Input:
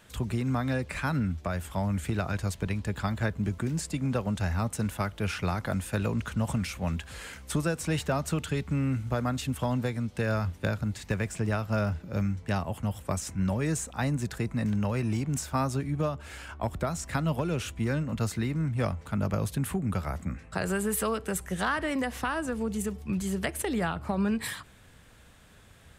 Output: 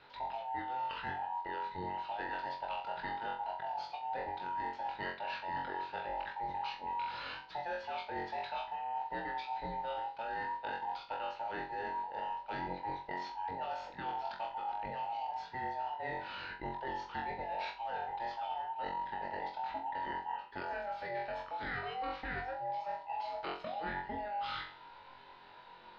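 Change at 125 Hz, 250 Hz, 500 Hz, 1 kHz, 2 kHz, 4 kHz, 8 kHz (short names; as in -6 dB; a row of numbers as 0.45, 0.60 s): -27.0 dB, -21.5 dB, -10.0 dB, +1.5 dB, -6.5 dB, -6.5 dB, under -30 dB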